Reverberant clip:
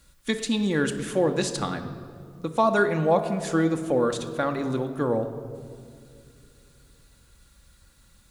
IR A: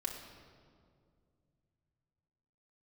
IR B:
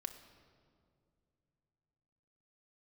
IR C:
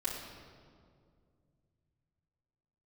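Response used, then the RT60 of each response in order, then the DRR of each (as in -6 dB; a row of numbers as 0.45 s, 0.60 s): B; 2.2 s, 2.4 s, 2.2 s; -1.0 dB, 6.0 dB, -8.5 dB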